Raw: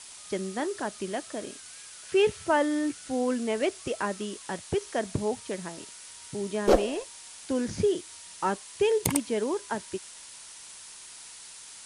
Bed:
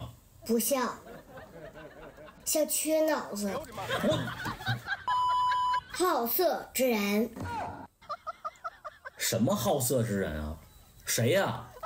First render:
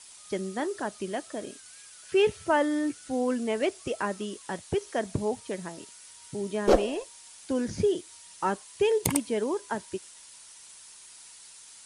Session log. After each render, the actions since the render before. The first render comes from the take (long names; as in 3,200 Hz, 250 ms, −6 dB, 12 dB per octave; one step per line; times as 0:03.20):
broadband denoise 6 dB, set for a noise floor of −47 dBFS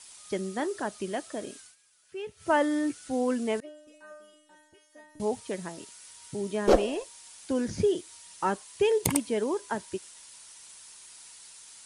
0:01.61–0:02.51: duck −15.5 dB, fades 0.15 s
0:03.60–0:05.20: stiff-string resonator 300 Hz, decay 0.82 s, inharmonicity 0.002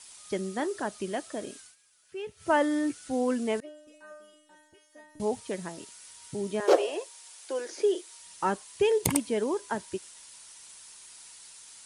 0:06.60–0:08.20: Butterworth high-pass 340 Hz 48 dB per octave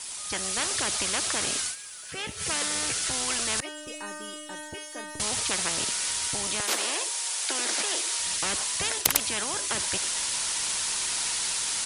automatic gain control gain up to 11.5 dB
every bin compressed towards the loudest bin 10 to 1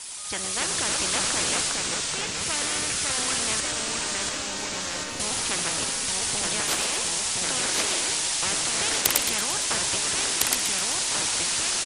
echo with shifted repeats 115 ms, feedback 56%, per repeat −80 Hz, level −10.5 dB
delay with pitch and tempo change per echo 247 ms, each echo −2 semitones, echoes 3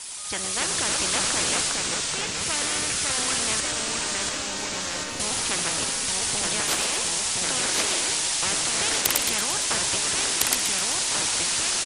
level +1 dB
brickwall limiter −3 dBFS, peak gain reduction 2.5 dB